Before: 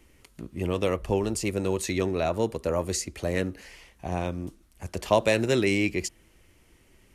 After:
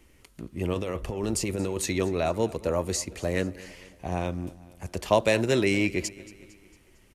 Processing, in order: 0.73–1.86 negative-ratio compressor -29 dBFS, ratio -1; feedback echo 0.227 s, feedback 52%, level -19.5 dB

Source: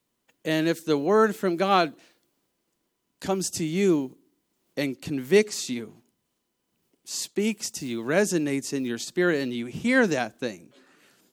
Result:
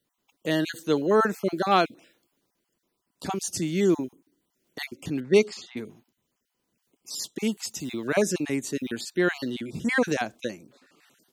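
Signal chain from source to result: random spectral dropouts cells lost 27%; 5.2–5.77 low-pass opened by the level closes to 1200 Hz, open at -14 dBFS

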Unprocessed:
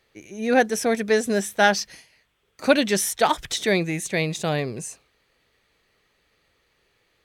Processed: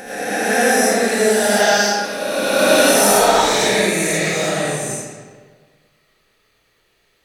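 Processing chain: spectral swells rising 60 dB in 2.29 s; high shelf 6800 Hz +9.5 dB; reverb RT60 1.6 s, pre-delay 40 ms, DRR -9.5 dB; gain -9 dB

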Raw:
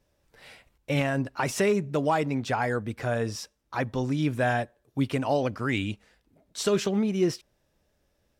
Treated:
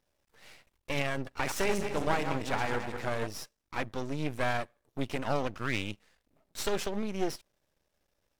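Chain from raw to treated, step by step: 1.24–3.27 regenerating reverse delay 0.108 s, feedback 61%, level -6.5 dB; low shelf 400 Hz -5.5 dB; half-wave rectifier

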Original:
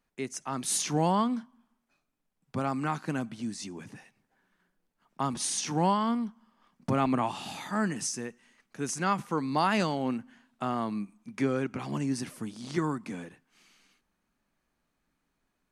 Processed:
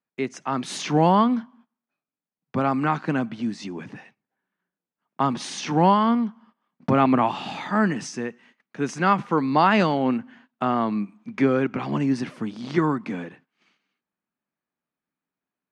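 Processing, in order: gate -60 dBFS, range -18 dB; BPF 130–3300 Hz; gain +8.5 dB

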